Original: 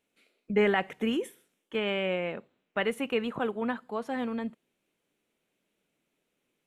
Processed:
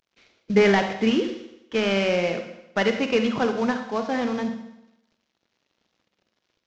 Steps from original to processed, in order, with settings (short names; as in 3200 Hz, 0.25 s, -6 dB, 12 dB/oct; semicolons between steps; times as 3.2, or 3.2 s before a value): CVSD 32 kbps; reverb RT60 0.90 s, pre-delay 41 ms, DRR 6.5 dB; gain +7 dB